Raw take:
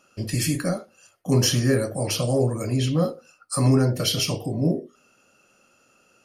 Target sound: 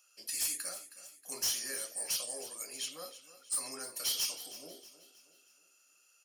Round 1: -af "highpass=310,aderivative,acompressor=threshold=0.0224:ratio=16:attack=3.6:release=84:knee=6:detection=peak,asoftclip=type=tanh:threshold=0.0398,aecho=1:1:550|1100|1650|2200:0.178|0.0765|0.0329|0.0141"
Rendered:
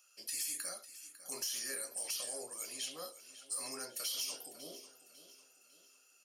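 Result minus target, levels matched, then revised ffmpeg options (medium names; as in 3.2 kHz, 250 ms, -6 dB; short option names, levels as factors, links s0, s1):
compression: peak gain reduction +14.5 dB; echo 233 ms late
-af "highpass=310,aderivative,asoftclip=type=tanh:threshold=0.0398,aecho=1:1:317|634|951|1268:0.178|0.0765|0.0329|0.0141"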